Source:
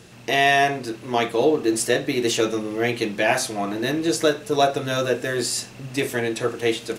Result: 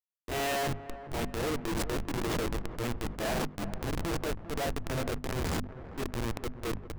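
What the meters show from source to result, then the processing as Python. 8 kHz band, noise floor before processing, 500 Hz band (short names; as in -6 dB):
-13.5 dB, -43 dBFS, -14.0 dB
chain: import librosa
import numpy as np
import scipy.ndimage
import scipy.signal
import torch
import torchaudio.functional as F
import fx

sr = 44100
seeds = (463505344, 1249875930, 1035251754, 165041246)

y = fx.schmitt(x, sr, flips_db=-19.0)
y = fx.hum_notches(y, sr, base_hz=50, count=5)
y = fx.transient(y, sr, attack_db=-6, sustain_db=6)
y = fx.echo_wet_lowpass(y, sr, ms=398, feedback_pct=58, hz=1600.0, wet_db=-13.5)
y = F.gain(torch.from_numpy(y), -7.5).numpy()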